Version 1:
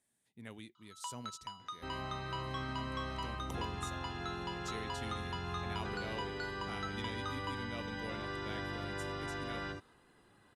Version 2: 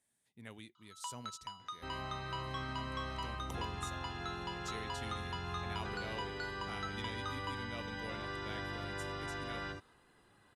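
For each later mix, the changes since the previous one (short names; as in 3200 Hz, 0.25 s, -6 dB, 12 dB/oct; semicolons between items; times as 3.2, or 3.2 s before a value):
master: add bell 260 Hz -3 dB 2 oct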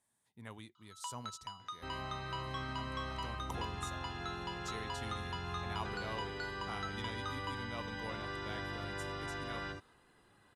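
speech: add fifteen-band EQ 100 Hz +4 dB, 1000 Hz +9 dB, 2500 Hz -3 dB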